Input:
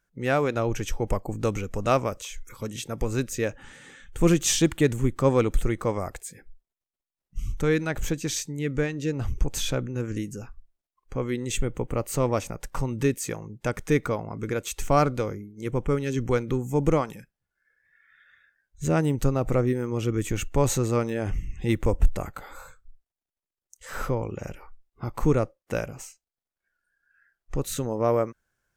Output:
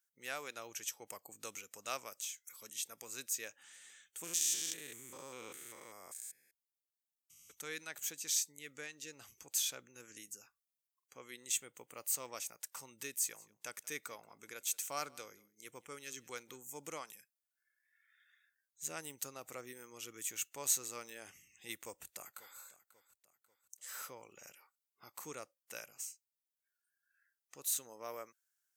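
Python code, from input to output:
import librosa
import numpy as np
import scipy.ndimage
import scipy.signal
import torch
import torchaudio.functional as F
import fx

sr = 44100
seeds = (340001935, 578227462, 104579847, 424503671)

y = fx.spec_steps(x, sr, hold_ms=200, at=(4.23, 7.5), fade=0.02)
y = fx.echo_single(y, sr, ms=179, db=-23.5, at=(13.33, 16.55), fade=0.02)
y = fx.echo_throw(y, sr, start_s=21.85, length_s=0.74, ms=540, feedback_pct=45, wet_db=-17.0)
y = scipy.signal.sosfilt(scipy.signal.butter(2, 100.0, 'highpass', fs=sr, output='sos'), y)
y = np.diff(y, prepend=0.0)
y = y * 10.0 ** (-1.5 / 20.0)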